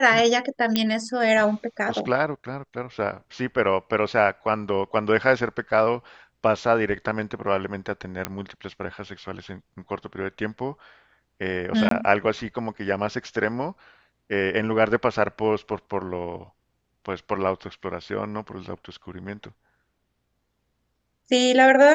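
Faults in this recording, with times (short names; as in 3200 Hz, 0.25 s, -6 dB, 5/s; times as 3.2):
0.76 pop -7 dBFS
8.25 pop -9 dBFS
11.89–11.91 gap 23 ms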